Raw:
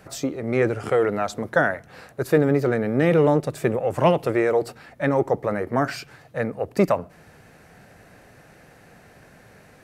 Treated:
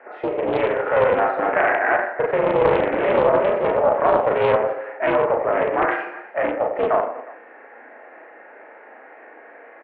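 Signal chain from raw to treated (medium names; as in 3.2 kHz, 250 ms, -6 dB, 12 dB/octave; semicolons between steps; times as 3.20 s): 1.11–3.70 s: chunks repeated in reverse 217 ms, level -4 dB; peak limiter -16 dBFS, peak gain reduction 10.5 dB; doubling 35 ms -4.5 dB; reverse bouncing-ball echo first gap 40 ms, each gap 1.3×, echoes 5; mistuned SSB +66 Hz 300–2100 Hz; loudspeaker Doppler distortion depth 0.4 ms; trim +5.5 dB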